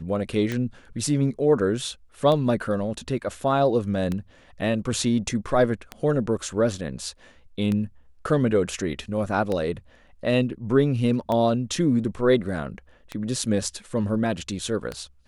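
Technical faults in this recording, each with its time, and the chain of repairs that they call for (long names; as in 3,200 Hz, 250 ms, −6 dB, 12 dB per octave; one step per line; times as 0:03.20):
scratch tick 33 1/3 rpm −15 dBFS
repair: click removal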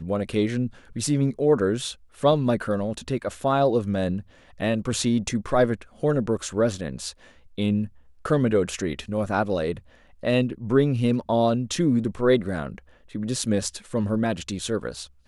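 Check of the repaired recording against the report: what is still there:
none of them is left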